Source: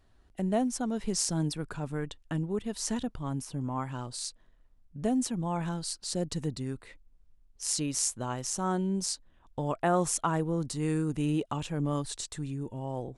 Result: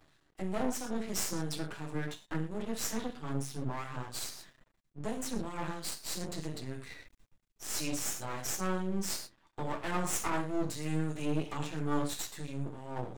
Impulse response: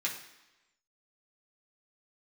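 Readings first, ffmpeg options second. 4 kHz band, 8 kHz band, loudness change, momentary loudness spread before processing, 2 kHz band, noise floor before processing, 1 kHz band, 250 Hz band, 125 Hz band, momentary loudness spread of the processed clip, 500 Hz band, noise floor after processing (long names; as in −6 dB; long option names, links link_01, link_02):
−3.0 dB, −4.5 dB, −4.5 dB, 8 LU, +1.0 dB, −63 dBFS, −4.5 dB, −5.5 dB, −5.5 dB, 8 LU, −5.0 dB, −73 dBFS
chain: -filter_complex "[1:a]atrim=start_sample=2205,atrim=end_sample=6174[link_01];[0:a][link_01]afir=irnorm=-1:irlink=0,asplit=2[link_02][link_03];[link_03]alimiter=limit=-23.5dB:level=0:latency=1:release=26,volume=-1dB[link_04];[link_02][link_04]amix=inputs=2:normalize=0,flanger=delay=6.7:depth=3.1:regen=75:speed=0.25:shape=triangular,acrossover=split=1700[link_05][link_06];[link_05]aeval=exprs='val(0)*(1-0.5/2+0.5/2*cos(2*PI*3*n/s))':channel_layout=same[link_07];[link_06]aeval=exprs='val(0)*(1-0.5/2-0.5/2*cos(2*PI*3*n/s))':channel_layout=same[link_08];[link_07][link_08]amix=inputs=2:normalize=0,aeval=exprs='max(val(0),0)':channel_layout=same,areverse,acompressor=mode=upward:threshold=-40dB:ratio=2.5,areverse"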